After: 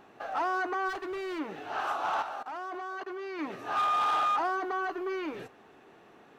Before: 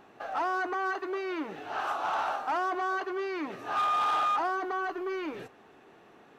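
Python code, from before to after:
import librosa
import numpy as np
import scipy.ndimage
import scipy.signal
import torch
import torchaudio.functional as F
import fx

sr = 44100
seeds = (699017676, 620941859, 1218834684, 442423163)

y = fx.overload_stage(x, sr, gain_db=33.0, at=(0.88, 1.38), fade=0.02)
y = fx.level_steps(y, sr, step_db=19, at=(2.22, 3.39))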